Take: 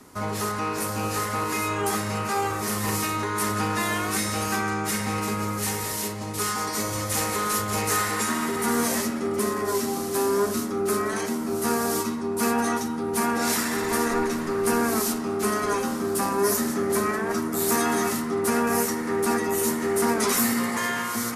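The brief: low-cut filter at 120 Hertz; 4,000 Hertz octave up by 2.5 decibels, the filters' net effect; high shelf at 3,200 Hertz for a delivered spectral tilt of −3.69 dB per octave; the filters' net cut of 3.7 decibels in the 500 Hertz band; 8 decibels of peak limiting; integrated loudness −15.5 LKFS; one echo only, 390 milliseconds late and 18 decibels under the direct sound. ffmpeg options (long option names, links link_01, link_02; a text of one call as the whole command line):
ffmpeg -i in.wav -af "highpass=120,equalizer=frequency=500:width_type=o:gain=-5,highshelf=frequency=3200:gain=-4,equalizer=frequency=4000:width_type=o:gain=6.5,alimiter=limit=-19.5dB:level=0:latency=1,aecho=1:1:390:0.126,volume=13dB" out.wav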